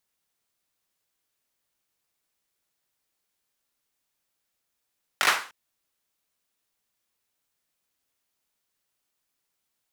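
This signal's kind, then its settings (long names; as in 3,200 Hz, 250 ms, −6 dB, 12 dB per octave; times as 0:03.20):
synth clap length 0.30 s, apart 20 ms, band 1,400 Hz, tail 0.40 s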